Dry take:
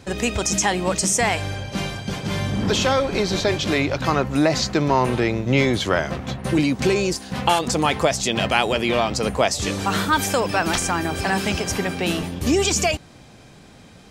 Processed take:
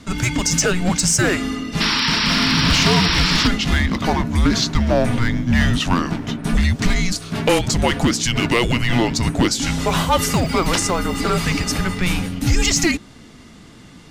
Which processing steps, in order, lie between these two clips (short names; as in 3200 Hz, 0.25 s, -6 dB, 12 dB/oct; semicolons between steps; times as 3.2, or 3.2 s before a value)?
painted sound noise, 1.8–3.48, 1200–6100 Hz -23 dBFS; one-sided clip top -14 dBFS; frequency shift -360 Hz; gain +3.5 dB